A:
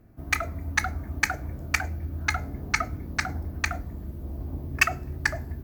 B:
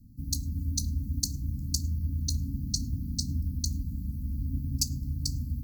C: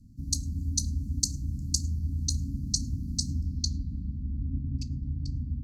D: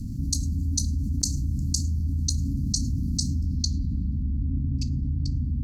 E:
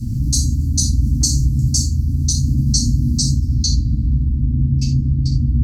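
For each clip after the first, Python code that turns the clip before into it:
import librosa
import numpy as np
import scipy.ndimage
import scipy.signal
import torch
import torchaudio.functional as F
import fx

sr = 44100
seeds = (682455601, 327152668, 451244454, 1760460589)

y1 = scipy.signal.sosfilt(scipy.signal.cheby1(5, 1.0, [270.0, 4300.0], 'bandstop', fs=sr, output='sos'), x)
y1 = y1 * librosa.db_to_amplitude(3.5)
y2 = fx.filter_sweep_lowpass(y1, sr, from_hz=8200.0, to_hz=2000.0, start_s=3.27, end_s=4.34, q=1.6)
y3 = fx.env_flatten(y2, sr, amount_pct=70)
y4 = fx.rev_gated(y3, sr, seeds[0], gate_ms=120, shape='falling', drr_db=-8.0)
y4 = y4 * librosa.db_to_amplitude(1.5)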